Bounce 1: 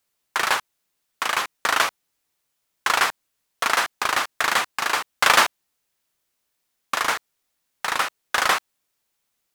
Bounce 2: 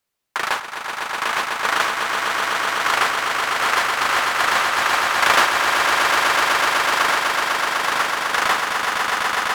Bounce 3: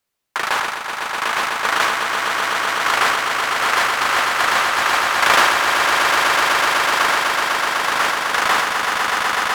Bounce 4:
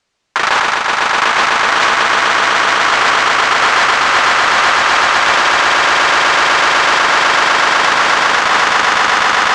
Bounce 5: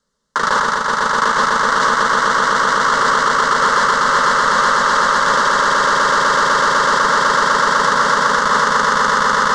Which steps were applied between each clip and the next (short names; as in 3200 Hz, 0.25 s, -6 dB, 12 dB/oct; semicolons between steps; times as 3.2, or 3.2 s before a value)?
high shelf 4400 Hz -5.5 dB; swelling echo 0.125 s, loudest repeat 8, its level -5.5 dB
sustainer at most 36 dB/s; gain +1 dB
LPF 7200 Hz 24 dB/oct; maximiser +12.5 dB; gain -1 dB
low shelf 350 Hz +9.5 dB; fixed phaser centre 490 Hz, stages 8; gain -1 dB